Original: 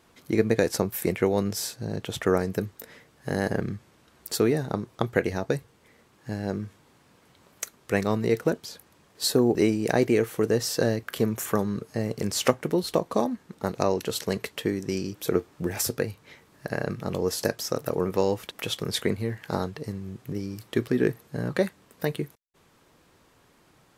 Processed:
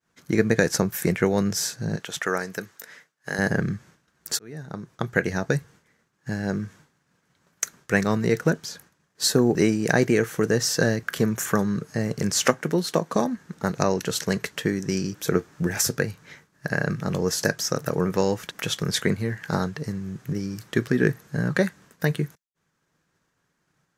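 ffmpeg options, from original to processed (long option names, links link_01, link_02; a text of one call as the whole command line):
ffmpeg -i in.wav -filter_complex "[0:a]asettb=1/sr,asplit=3[link_01][link_02][link_03];[link_01]atrim=end=1.964[link_04];[link_02]atrim=start=1.96:end=3.39,asetpts=PTS-STARTPTS,afade=type=in:duration=0.004:curve=qsin,afade=type=out:start_time=1.426:duration=0.004:curve=qsin,highpass=frequency=750:poles=1[link_05];[link_03]atrim=start=3.386[link_06];[link_04][link_05]acrossfade=duration=0.004:curve1=hsin:curve2=qsin[link_07];[link_07][link_06]acrossfade=duration=0.004:curve1=qsin:curve2=hsin,asettb=1/sr,asplit=3[link_08][link_09][link_10];[link_08]atrim=end=12.474[link_11];[link_09]atrim=start=12.47:end=13.16,asetpts=PTS-STARTPTS,afade=type=in:duration=0.004:curve=qsin,afade=type=out:start_time=0.686:duration=0.004:curve=qsin,highpass=170[link_12];[link_10]atrim=start=13.156[link_13];[link_11][link_12]acrossfade=duration=0.004:curve1=hsin:curve2=qsin[link_14];[link_14][link_13]acrossfade=duration=0.004:curve1=qsin:curve2=hsin,asplit=2[link_15][link_16];[link_15]atrim=end=4.39,asetpts=PTS-STARTPTS,afade=type=out:start_time=4.386:duration=0.004:curve=hsin[link_17];[link_16]atrim=start=4.39,asetpts=PTS-STARTPTS,afade=type=in:duration=1.02[link_18];[link_17][link_18]concat=n=2:v=0:a=1,agate=range=-33dB:threshold=-49dB:ratio=3:detection=peak,equalizer=frequency=160:width_type=o:width=0.67:gain=9,equalizer=frequency=1600:width_type=o:width=0.67:gain=9,equalizer=frequency=6300:width_type=o:width=0.67:gain=8" out.wav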